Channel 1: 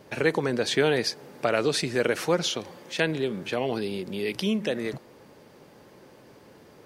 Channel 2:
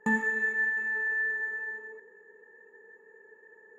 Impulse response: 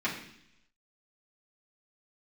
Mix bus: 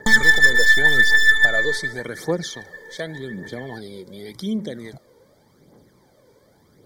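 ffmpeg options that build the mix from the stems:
-filter_complex "[0:a]equalizer=frequency=1500:width=0.47:gain=-5,volume=-3dB[link_01];[1:a]equalizer=frequency=2000:width=0.32:gain=10.5,crystalizer=i=2.5:c=0,aeval=exprs='0.158*(cos(1*acos(clip(val(0)/0.158,-1,1)))-cos(1*PI/2))+0.0355*(cos(2*acos(clip(val(0)/0.158,-1,1)))-cos(2*PI/2))+0.00562*(cos(6*acos(clip(val(0)/0.158,-1,1)))-cos(6*PI/2))':channel_layout=same,volume=1.5dB[link_02];[link_01][link_02]amix=inputs=2:normalize=0,aphaser=in_gain=1:out_gain=1:delay=2.2:decay=0.57:speed=0.87:type=triangular,asuperstop=centerf=2700:order=20:qfactor=3.7"

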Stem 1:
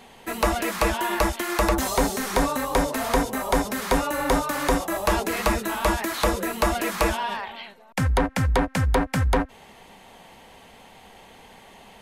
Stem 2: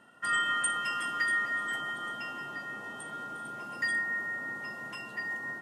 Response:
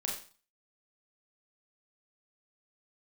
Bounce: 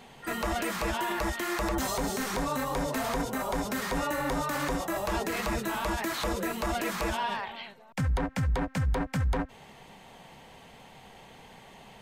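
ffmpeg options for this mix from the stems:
-filter_complex "[0:a]equalizer=frequency=11000:width=3.4:gain=-7.5,volume=-3dB[link_01];[1:a]volume=-12dB[link_02];[link_01][link_02]amix=inputs=2:normalize=0,equalizer=frequency=140:width_type=o:width=0.48:gain=9,alimiter=limit=-21.5dB:level=0:latency=1:release=26"

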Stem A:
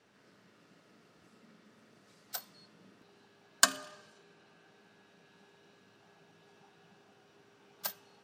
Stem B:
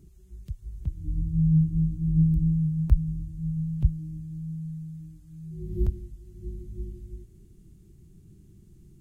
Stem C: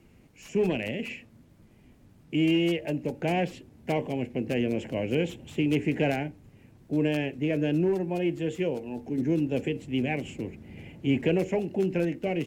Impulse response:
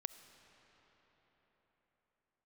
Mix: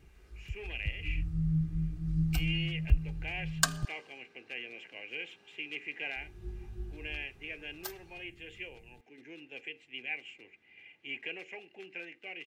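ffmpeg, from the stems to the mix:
-filter_complex "[0:a]volume=-4dB[link_01];[1:a]volume=-7dB,asplit=3[link_02][link_03][link_04];[link_02]atrim=end=3.85,asetpts=PTS-STARTPTS,afade=type=out:start_time=3.846:duration=0.004:curve=hsin[link_05];[link_03]atrim=start=3.85:end=6.16,asetpts=PTS-STARTPTS,volume=0[link_06];[link_04]atrim=start=6.16,asetpts=PTS-STARTPTS,afade=type=in:duration=0.004:curve=hsin[link_07];[link_05][link_06][link_07]concat=n=3:v=0:a=1[link_08];[2:a]bandpass=frequency=2400:width_type=q:width=2.3:csg=0,volume=-1.5dB[link_09];[link_01][link_08][link_09]amix=inputs=3:normalize=0,aecho=1:1:2.5:0.35"

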